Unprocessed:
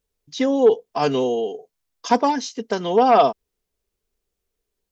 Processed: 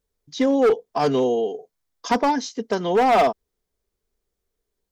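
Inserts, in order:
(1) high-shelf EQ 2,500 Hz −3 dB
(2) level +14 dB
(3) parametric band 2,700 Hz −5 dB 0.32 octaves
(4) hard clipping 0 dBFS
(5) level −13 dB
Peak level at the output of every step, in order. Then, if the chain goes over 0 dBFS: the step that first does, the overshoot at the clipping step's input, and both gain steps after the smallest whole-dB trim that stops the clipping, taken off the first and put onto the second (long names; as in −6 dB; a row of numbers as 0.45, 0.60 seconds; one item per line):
−5.0, +9.0, +9.0, 0.0, −13.0 dBFS
step 2, 9.0 dB
step 2 +5 dB, step 5 −4 dB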